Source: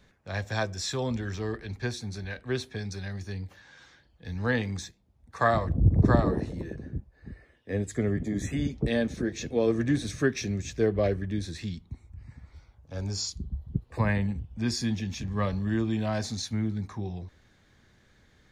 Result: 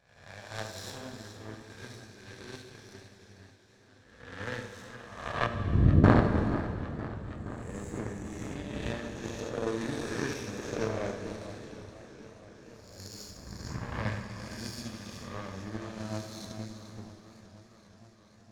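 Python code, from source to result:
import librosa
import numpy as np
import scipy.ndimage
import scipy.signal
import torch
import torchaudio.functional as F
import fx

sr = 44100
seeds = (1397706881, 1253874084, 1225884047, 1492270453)

y = fx.spec_swells(x, sr, rise_s=1.91)
y = fx.echo_multitap(y, sr, ms=(74, 447), db=(-3.5, -7.0))
y = fx.power_curve(y, sr, exponent=2.0)
y = fx.gaussian_blur(y, sr, sigma=20.0, at=(5.46, 6.04))
y = fx.rev_plate(y, sr, seeds[0], rt60_s=2.7, hf_ratio=0.9, predelay_ms=0, drr_db=6.5)
y = fx.echo_warbled(y, sr, ms=474, feedback_pct=78, rate_hz=2.8, cents=127, wet_db=-16.5)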